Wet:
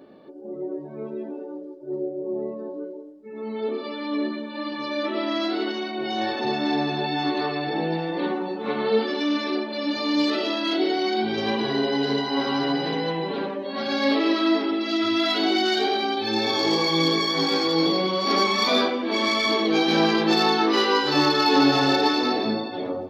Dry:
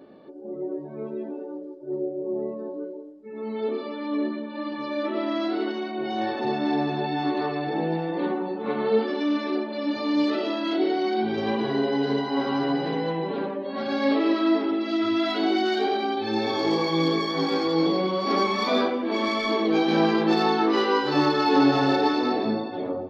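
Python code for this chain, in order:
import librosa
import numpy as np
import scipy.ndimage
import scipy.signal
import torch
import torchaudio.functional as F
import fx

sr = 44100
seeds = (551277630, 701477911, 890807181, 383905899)

y = fx.high_shelf(x, sr, hz=2600.0, db=fx.steps((0.0, 3.0), (3.83, 11.5)))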